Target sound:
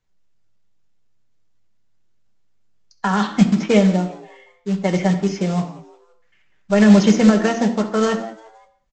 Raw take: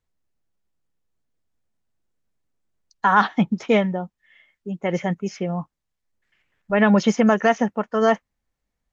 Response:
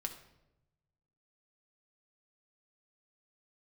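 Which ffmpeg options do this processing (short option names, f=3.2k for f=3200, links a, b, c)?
-filter_complex "[0:a]acrossover=split=460|3000[a][b][c];[b]acompressor=threshold=-26dB:ratio=6[d];[a][d][c]amix=inputs=3:normalize=0,aresample=16000,acrusher=bits=4:mode=log:mix=0:aa=0.000001,aresample=44100,asplit=4[e][f][g][h];[f]adelay=173,afreqshift=110,volume=-21dB[i];[g]adelay=346,afreqshift=220,volume=-27.9dB[j];[h]adelay=519,afreqshift=330,volume=-34.9dB[k];[e][i][j][k]amix=inputs=4:normalize=0[l];[1:a]atrim=start_sample=2205,afade=t=out:st=0.26:d=0.01,atrim=end_sample=11907[m];[l][m]afir=irnorm=-1:irlink=0,volume=5.5dB"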